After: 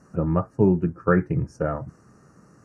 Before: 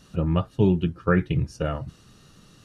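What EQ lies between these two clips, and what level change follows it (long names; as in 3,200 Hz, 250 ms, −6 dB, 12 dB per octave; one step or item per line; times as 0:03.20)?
high-pass filter 170 Hz 6 dB per octave
Butterworth band-reject 3,400 Hz, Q 0.69
high-frequency loss of the air 72 metres
+3.5 dB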